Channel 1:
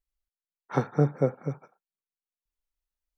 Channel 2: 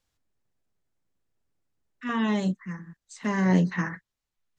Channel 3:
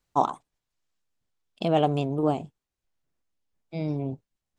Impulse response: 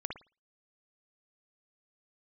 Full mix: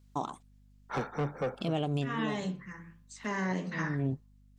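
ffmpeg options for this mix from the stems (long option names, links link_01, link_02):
-filter_complex "[0:a]highpass=frequency=270:poles=1,asoftclip=type=tanh:threshold=-28.5dB,adelay=200,volume=1.5dB[link_01];[1:a]flanger=delay=7.2:depth=8.2:regen=83:speed=1.3:shape=sinusoidal,lowshelf=frequency=230:gain=-10.5,bandreject=frequency=171.7:width_type=h:width=4,bandreject=frequency=343.4:width_type=h:width=4,bandreject=frequency=515.1:width_type=h:width=4,bandreject=frequency=686.8:width_type=h:width=4,bandreject=frequency=858.5:width_type=h:width=4,bandreject=frequency=1030.2:width_type=h:width=4,bandreject=frequency=1201.9:width_type=h:width=4,volume=-1.5dB,asplit=3[link_02][link_03][link_04];[link_03]volume=-7dB[link_05];[2:a]equalizer=frequency=770:width_type=o:width=2.3:gain=-8.5,aeval=exprs='val(0)+0.000794*(sin(2*PI*50*n/s)+sin(2*PI*2*50*n/s)/2+sin(2*PI*3*50*n/s)/3+sin(2*PI*4*50*n/s)/4+sin(2*PI*5*50*n/s)/5)':channel_layout=same,volume=3dB[link_06];[link_04]apad=whole_len=202343[link_07];[link_06][link_07]sidechaincompress=threshold=-44dB:ratio=8:attack=38:release=228[link_08];[3:a]atrim=start_sample=2205[link_09];[link_05][link_09]afir=irnorm=-1:irlink=0[link_10];[link_01][link_02][link_08][link_10]amix=inputs=4:normalize=0,alimiter=limit=-22.5dB:level=0:latency=1:release=234"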